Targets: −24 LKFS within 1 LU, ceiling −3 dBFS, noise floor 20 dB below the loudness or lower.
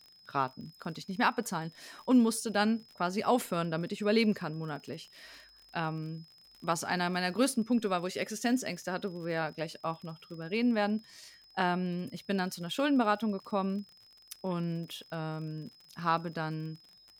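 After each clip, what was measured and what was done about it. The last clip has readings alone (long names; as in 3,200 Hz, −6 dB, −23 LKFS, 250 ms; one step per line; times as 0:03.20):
crackle rate 43 per second; interfering tone 5,100 Hz; level of the tone −57 dBFS; integrated loudness −32.5 LKFS; sample peak −15.5 dBFS; target loudness −24.0 LKFS
→ click removal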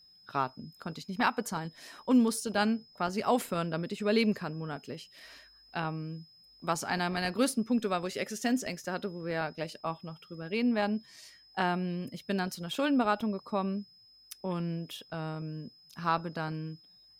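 crackle rate 0.12 per second; interfering tone 5,100 Hz; level of the tone −57 dBFS
→ notch filter 5,100 Hz, Q 30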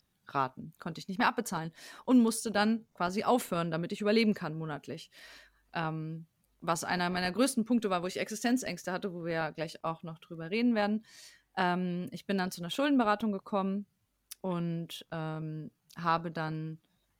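interfering tone none found; integrated loudness −32.5 LKFS; sample peak −15.5 dBFS; target loudness −24.0 LKFS
→ level +8.5 dB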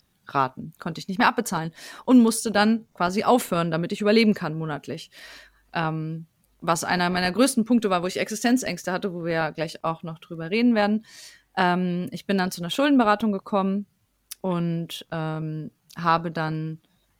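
integrated loudness −24.0 LKFS; sample peak −7.0 dBFS; background noise floor −68 dBFS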